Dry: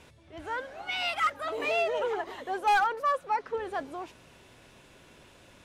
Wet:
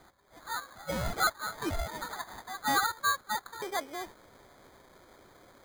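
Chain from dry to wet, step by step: high-pass 960 Hz 24 dB/octave, from 3.62 s 310 Hz; sample-and-hold 16×

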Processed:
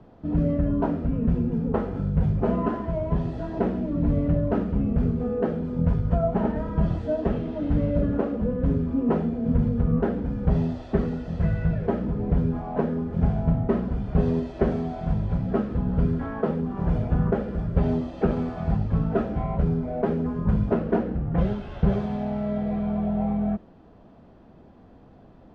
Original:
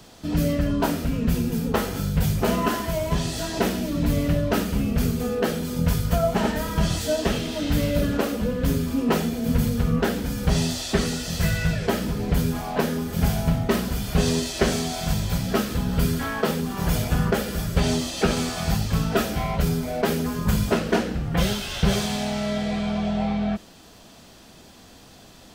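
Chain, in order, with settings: Bessel low-pass 740 Hz, order 2

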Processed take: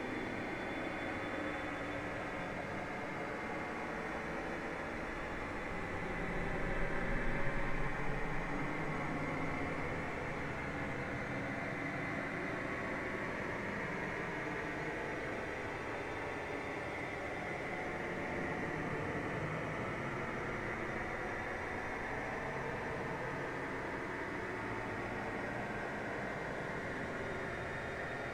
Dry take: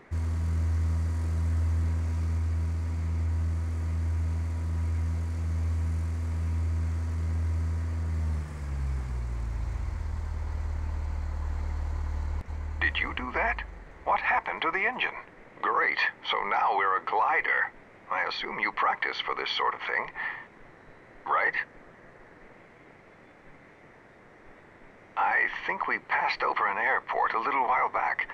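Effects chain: Paulstretch 32×, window 0.10 s, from 23.26 s; trim +13.5 dB

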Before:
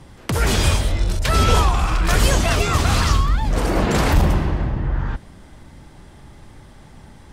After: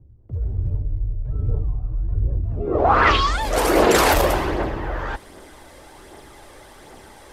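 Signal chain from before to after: 0.66–2.07 s: comb 6.8 ms, depth 79%; low-pass sweep 100 Hz -> 13 kHz, 2.47–3.44 s; phaser 1.3 Hz, delay 1.9 ms, feedback 34%; resonant low shelf 260 Hz -13.5 dB, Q 1.5; trim +4 dB

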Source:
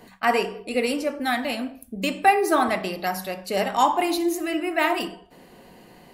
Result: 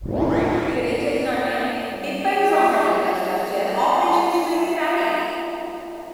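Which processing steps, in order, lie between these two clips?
tape start-up on the opening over 0.49 s; treble shelf 2.6 kHz -10 dB; added noise pink -57 dBFS; peaking EQ 170 Hz -9.5 dB 1.4 oct; two-band feedback delay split 840 Hz, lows 463 ms, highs 206 ms, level -7.5 dB; gated-style reverb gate 410 ms flat, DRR -7.5 dB; trim -3 dB

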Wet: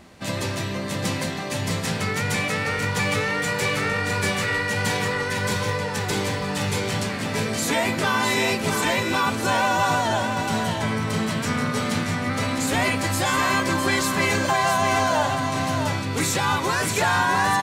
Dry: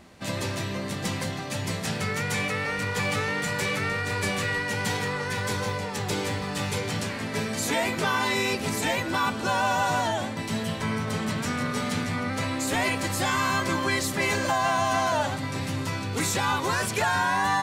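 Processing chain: delay 657 ms -6 dB; trim +3 dB

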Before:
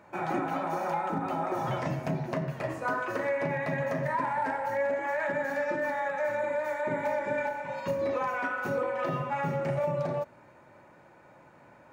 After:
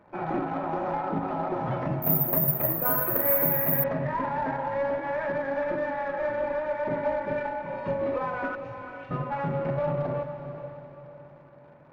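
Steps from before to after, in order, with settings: 8.55–9.11 s: elliptic band-stop 110–2400 Hz; Chebyshev shaper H 2 -19 dB, 6 -25 dB, 8 -22 dB, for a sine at -20.5 dBFS; in parallel at -6.5 dB: word length cut 8-bit, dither none; on the sum: tape spacing loss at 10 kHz 39 dB; on a send: echo that smears into a reverb 458 ms, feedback 43%, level -9.5 dB; 2.02–3.84 s: on the sum: careless resampling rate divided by 3×, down none, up zero stuff

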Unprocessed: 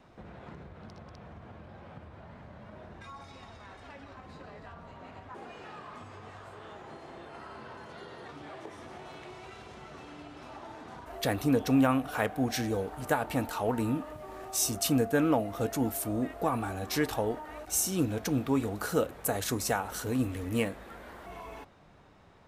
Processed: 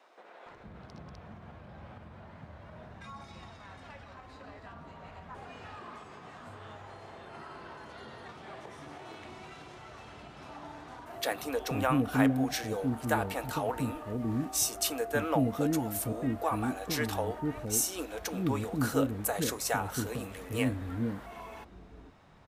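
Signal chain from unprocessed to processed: bands offset in time highs, lows 460 ms, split 390 Hz

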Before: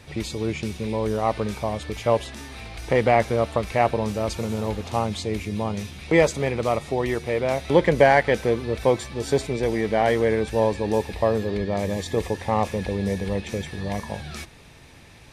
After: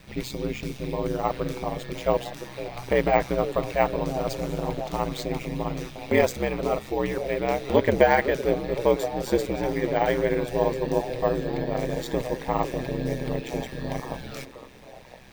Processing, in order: careless resampling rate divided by 2×, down filtered, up hold; ring modulator 64 Hz; repeats whose band climbs or falls 508 ms, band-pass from 370 Hz, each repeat 0.7 oct, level -8 dB

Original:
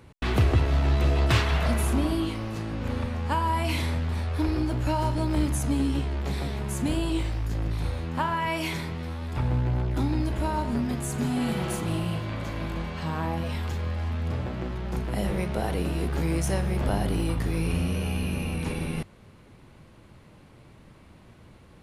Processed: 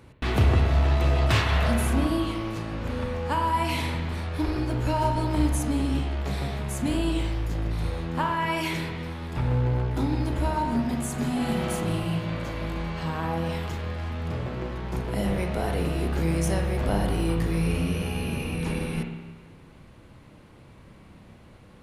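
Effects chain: spring tank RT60 1.3 s, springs 30/56 ms, chirp 20 ms, DRR 3.5 dB

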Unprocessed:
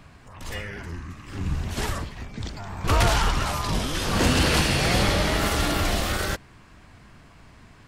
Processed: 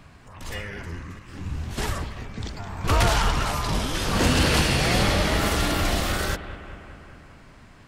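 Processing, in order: bucket-brigade echo 200 ms, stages 4096, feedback 67%, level -13.5 dB; 1.19–1.78 s: detune thickener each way 56 cents

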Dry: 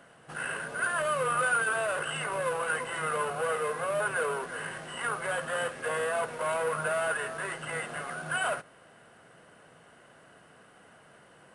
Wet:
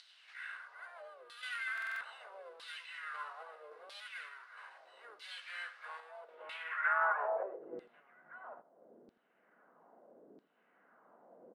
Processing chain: frequency weighting A; harmony voices -5 st -17 dB, +5 st -7 dB; random-step tremolo; upward compressor, threshold -41 dBFS; band-pass sweep 4.5 kHz -> 220 Hz, 6.20–7.88 s; peaking EQ 3.4 kHz -11.5 dB 2.6 oct; LFO band-pass saw down 0.77 Hz 330–4200 Hz; delay 83 ms -18 dB; buffer glitch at 1.73 s, samples 2048, times 5; trim +15.5 dB

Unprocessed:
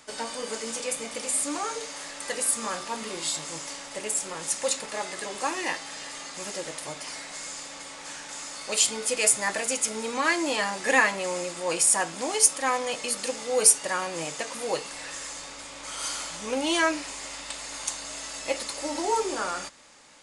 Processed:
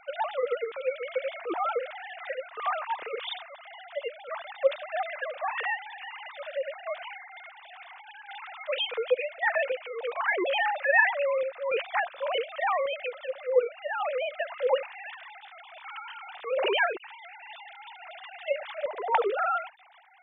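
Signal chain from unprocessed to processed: formants replaced by sine waves; in parallel at -1 dB: compressor with a negative ratio -30 dBFS, ratio -1; on the sum: random-step tremolo 3.5 Hz; trim -2.5 dB

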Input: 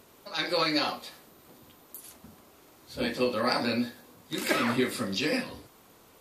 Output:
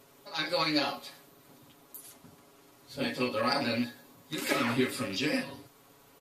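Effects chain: rattle on loud lows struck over -35 dBFS, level -27 dBFS; comb 7.2 ms, depth 78%; trim -4 dB

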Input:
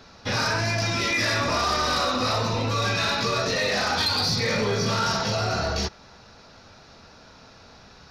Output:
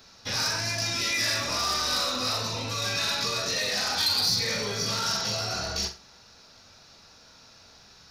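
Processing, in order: pre-emphasis filter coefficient 0.8; on a send: flutter echo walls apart 7.5 m, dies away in 0.29 s; on the sum: trim +4.5 dB

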